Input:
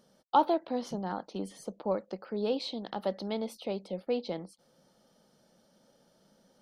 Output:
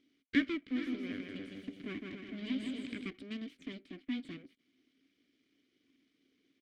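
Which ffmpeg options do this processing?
-filter_complex "[0:a]aeval=exprs='abs(val(0))':c=same,asplit=3[a][b][c];[a]bandpass=f=270:t=q:w=8,volume=0dB[d];[b]bandpass=f=2.29k:t=q:w=8,volume=-6dB[e];[c]bandpass=f=3.01k:t=q:w=8,volume=-9dB[f];[d][e][f]amix=inputs=3:normalize=0,asplit=3[g][h][i];[g]afade=t=out:st=0.75:d=0.02[j];[h]aecho=1:1:160|280|370|437.5|488.1:0.631|0.398|0.251|0.158|0.1,afade=t=in:st=0.75:d=0.02,afade=t=out:st=3.08:d=0.02[k];[i]afade=t=in:st=3.08:d=0.02[l];[j][k][l]amix=inputs=3:normalize=0,volume=10dB"

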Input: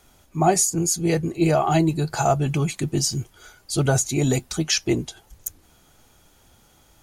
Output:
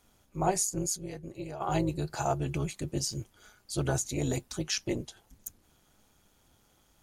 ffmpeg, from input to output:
-filter_complex "[0:a]asplit=3[a][b][c];[a]afade=t=out:st=0.96:d=0.02[d];[b]acompressor=threshold=-27dB:ratio=10,afade=t=in:st=0.96:d=0.02,afade=t=out:st=1.6:d=0.02[e];[c]afade=t=in:st=1.6:d=0.02[f];[d][e][f]amix=inputs=3:normalize=0,tremolo=f=210:d=0.75,volume=-6.5dB"

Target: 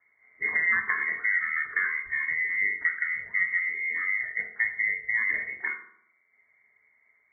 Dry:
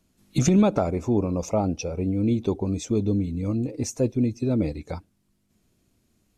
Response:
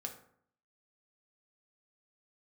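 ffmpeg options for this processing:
-filter_complex "[0:a]acrossover=split=340|1600[a][b][c];[a]acompressor=threshold=-34dB:ratio=4[d];[b]acompressor=threshold=-28dB:ratio=4[e];[c]acompressor=threshold=-39dB:ratio=4[f];[d][e][f]amix=inputs=3:normalize=0,lowpass=f=2.2k:t=q:w=0.5098,lowpass=f=2.2k:t=q:w=0.6013,lowpass=f=2.2k:t=q:w=0.9,lowpass=f=2.2k:t=q:w=2.563,afreqshift=-2600[g];[1:a]atrim=start_sample=2205[h];[g][h]afir=irnorm=-1:irlink=0,asetrate=38367,aresample=44100,volume=5dB"

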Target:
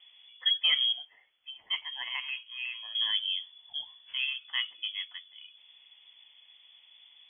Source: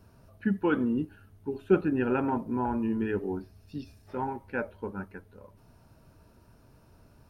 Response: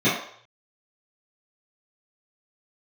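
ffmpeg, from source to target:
-filter_complex "[0:a]asettb=1/sr,asplit=3[a][b][c];[a]atrim=end=0.924[d];[b]atrim=start=0.92:end=2.95,asetpts=PTS-STARTPTS,afade=t=in:d=0.004:c=qsin,afade=t=out:st=2.026:d=0.004:c=qsin,highpass=f=1.3k:p=1[e];[c]atrim=start=2.946[f];[d][e]acrossfade=d=0.004:c1=hsin:c2=qsin[g];[g][f]acrossfade=d=0.004:c1=qsin:c2=hsin,lowpass=f=3k:t=q:w=0.5098,lowpass=f=3k:t=q:w=0.6013,lowpass=f=3k:t=q:w=0.9,lowpass=f=3k:t=q:w=2.563,afreqshift=-3500"

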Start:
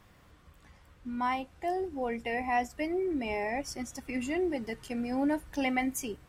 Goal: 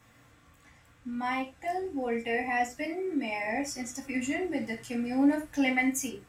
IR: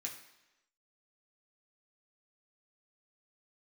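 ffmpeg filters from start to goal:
-filter_complex "[0:a]asettb=1/sr,asplit=3[a][b][c];[a]atrim=end=2.854[d];[b]atrim=start=2.85:end=3.45,asetpts=PTS-STARTPTS,afade=t=in:d=0.004:c=qsin,afade=t=out:st=0.596:d=0.004:c=qsin,highpass=f=190:p=1[e];[c]atrim=start=3.446[f];[d][e]acrossfade=d=0.004:c1=hsin:c2=qsin[g];[g][f]acrossfade=d=0.004:c1=qsin:c2=hsin[h];[1:a]atrim=start_sample=2205,atrim=end_sample=4410[i];[h][i]afir=irnorm=-1:irlink=0,volume=4dB"

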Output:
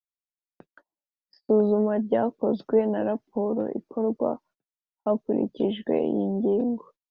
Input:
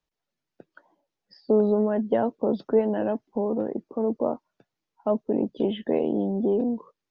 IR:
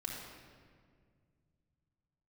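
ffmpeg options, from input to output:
-af "agate=range=-30dB:threshold=-51dB:ratio=16:detection=peak"

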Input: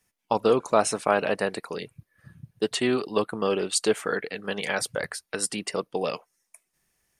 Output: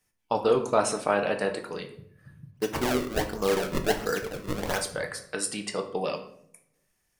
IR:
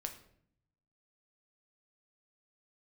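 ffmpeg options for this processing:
-filter_complex "[0:a]asplit=3[a][b][c];[a]afade=t=out:st=2.5:d=0.02[d];[b]acrusher=samples=32:mix=1:aa=0.000001:lfo=1:lforange=51.2:lforate=1.4,afade=t=in:st=2.5:d=0.02,afade=t=out:st=4.77:d=0.02[e];[c]afade=t=in:st=4.77:d=0.02[f];[d][e][f]amix=inputs=3:normalize=0[g];[1:a]atrim=start_sample=2205[h];[g][h]afir=irnorm=-1:irlink=0"

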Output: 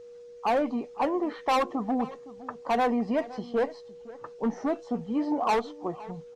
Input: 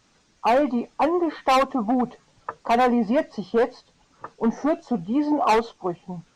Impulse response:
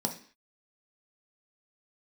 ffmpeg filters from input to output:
-filter_complex "[0:a]asplit=2[a][b];[b]adelay=513.1,volume=-18dB,highshelf=f=4k:g=-11.5[c];[a][c]amix=inputs=2:normalize=0,aeval=exprs='val(0)+0.0126*sin(2*PI*480*n/s)':c=same,volume=-6dB"

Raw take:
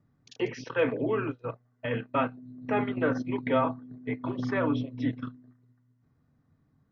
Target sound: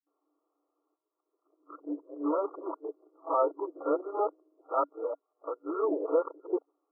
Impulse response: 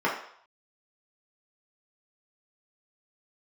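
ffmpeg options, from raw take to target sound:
-af "areverse,afftfilt=real='re*between(b*sr/4096,290,1400)':imag='im*between(b*sr/4096,290,1400)':win_size=4096:overlap=0.75"

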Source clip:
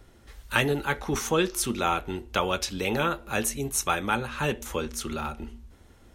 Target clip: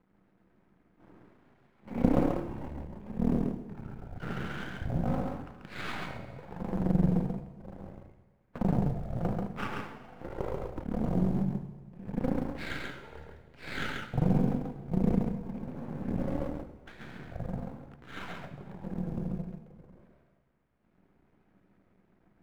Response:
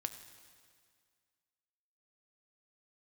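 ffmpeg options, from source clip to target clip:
-filter_complex "[0:a]asetrate=12083,aresample=44100,highpass=f=170:t=q:w=0.5412,highpass=f=170:t=q:w=1.307,lowpass=f=2.3k:t=q:w=0.5176,lowpass=f=2.3k:t=q:w=0.7071,lowpass=f=2.3k:t=q:w=1.932,afreqshift=-190,aeval=exprs='max(val(0),0)':c=same,asplit=2[a][b];[b]acrusher=bits=4:mode=log:mix=0:aa=0.000001,volume=-9dB[c];[a][c]amix=inputs=2:normalize=0,equalizer=f=190:w=0.52:g=10,asplit=2[d][e];[1:a]atrim=start_sample=2205,asetrate=57330,aresample=44100,adelay=137[f];[e][f]afir=irnorm=-1:irlink=0,volume=1dB[g];[d][g]amix=inputs=2:normalize=0,volume=-8.5dB"

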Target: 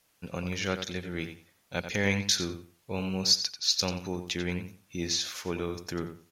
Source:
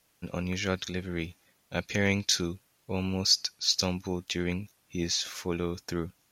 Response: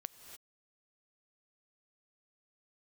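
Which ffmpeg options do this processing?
-filter_complex "[0:a]lowshelf=f=410:g=-3,asplit=2[a][b];[b]adelay=90,lowpass=f=4.8k:p=1,volume=-9dB,asplit=2[c][d];[d]adelay=90,lowpass=f=4.8k:p=1,volume=0.22,asplit=2[e][f];[f]adelay=90,lowpass=f=4.8k:p=1,volume=0.22[g];[a][c][e][g]amix=inputs=4:normalize=0"

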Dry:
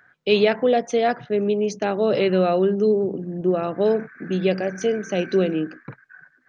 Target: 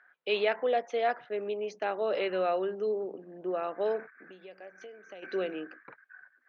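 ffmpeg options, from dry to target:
-filter_complex "[0:a]asplit=3[a][b][c];[a]afade=t=out:st=4.09:d=0.02[d];[b]acompressor=threshold=-34dB:ratio=8,afade=t=in:st=4.09:d=0.02,afade=t=out:st=5.22:d=0.02[e];[c]afade=t=in:st=5.22:d=0.02[f];[d][e][f]amix=inputs=3:normalize=0,highpass=550,lowpass=3k,volume=-5.5dB"

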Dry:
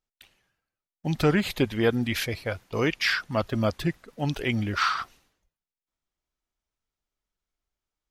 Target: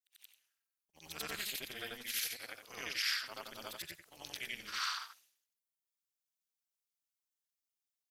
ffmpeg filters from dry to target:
-af "afftfilt=real='re':imag='-im':win_size=8192:overlap=0.75,aderivative,tremolo=f=240:d=0.919,volume=7.5dB"

